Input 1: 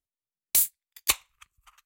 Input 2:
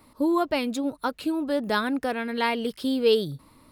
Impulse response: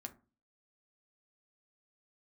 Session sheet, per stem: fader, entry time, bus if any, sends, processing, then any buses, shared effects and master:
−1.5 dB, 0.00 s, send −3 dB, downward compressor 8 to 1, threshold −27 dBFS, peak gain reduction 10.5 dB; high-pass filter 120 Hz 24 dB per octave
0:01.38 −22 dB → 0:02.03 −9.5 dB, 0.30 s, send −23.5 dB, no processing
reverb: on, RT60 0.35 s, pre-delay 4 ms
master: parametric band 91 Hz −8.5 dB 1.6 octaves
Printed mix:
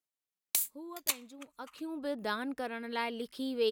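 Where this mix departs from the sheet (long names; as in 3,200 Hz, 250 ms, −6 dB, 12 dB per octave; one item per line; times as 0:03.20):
stem 2: entry 0.30 s → 0.55 s
reverb return −8.5 dB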